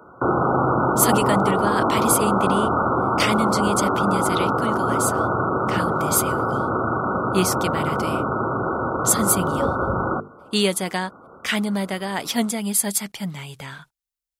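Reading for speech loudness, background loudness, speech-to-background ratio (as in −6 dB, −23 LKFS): −24.0 LKFS, −21.5 LKFS, −2.5 dB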